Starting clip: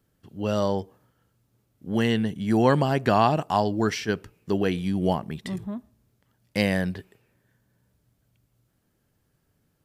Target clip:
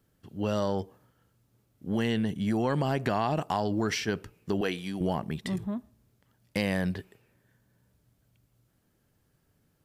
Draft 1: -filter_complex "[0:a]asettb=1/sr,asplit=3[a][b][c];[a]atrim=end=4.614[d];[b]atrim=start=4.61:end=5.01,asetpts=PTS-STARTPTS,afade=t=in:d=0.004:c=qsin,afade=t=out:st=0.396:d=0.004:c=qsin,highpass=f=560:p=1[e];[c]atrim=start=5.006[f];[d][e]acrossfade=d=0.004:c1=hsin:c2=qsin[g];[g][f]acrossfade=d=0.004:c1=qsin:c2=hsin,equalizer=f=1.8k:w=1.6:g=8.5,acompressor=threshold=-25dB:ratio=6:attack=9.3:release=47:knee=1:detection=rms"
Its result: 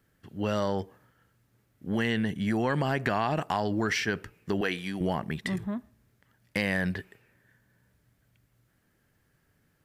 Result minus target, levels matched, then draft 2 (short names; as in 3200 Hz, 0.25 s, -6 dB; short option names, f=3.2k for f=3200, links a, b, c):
2000 Hz band +5.0 dB
-filter_complex "[0:a]asettb=1/sr,asplit=3[a][b][c];[a]atrim=end=4.614[d];[b]atrim=start=4.61:end=5.01,asetpts=PTS-STARTPTS,afade=t=in:d=0.004:c=qsin,afade=t=out:st=0.396:d=0.004:c=qsin,highpass=f=560:p=1[e];[c]atrim=start=5.006[f];[d][e]acrossfade=d=0.004:c1=hsin:c2=qsin[g];[g][f]acrossfade=d=0.004:c1=qsin:c2=hsin,acompressor=threshold=-25dB:ratio=6:attack=9.3:release=47:knee=1:detection=rms"